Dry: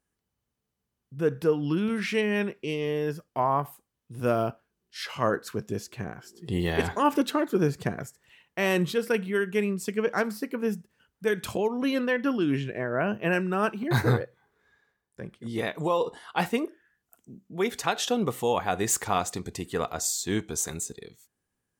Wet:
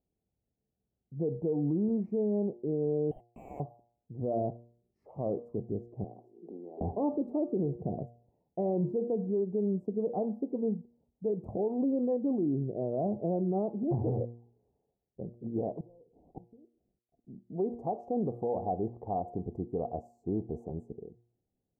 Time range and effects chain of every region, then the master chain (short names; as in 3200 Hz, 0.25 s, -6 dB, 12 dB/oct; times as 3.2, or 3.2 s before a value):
3.11–3.6 HPF 140 Hz 24 dB/oct + inverted band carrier 3300 Hz + sample leveller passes 5
6.04–6.81 steep high-pass 230 Hz + compressor 12:1, threshold -39 dBFS
15.8–17.4 CVSD 16 kbps + Gaussian blur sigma 14 samples + flipped gate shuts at -29 dBFS, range -27 dB
18.88–19.28 rippled Chebyshev low-pass 4500 Hz, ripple 3 dB + notch 1300 Hz, Q 24
whole clip: elliptic low-pass 750 Hz, stop band 50 dB; de-hum 118.4 Hz, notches 10; limiter -23 dBFS